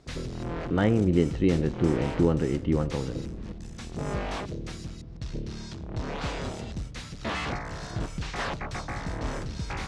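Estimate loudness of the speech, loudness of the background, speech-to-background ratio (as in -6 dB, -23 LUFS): -26.0 LUFS, -35.5 LUFS, 9.5 dB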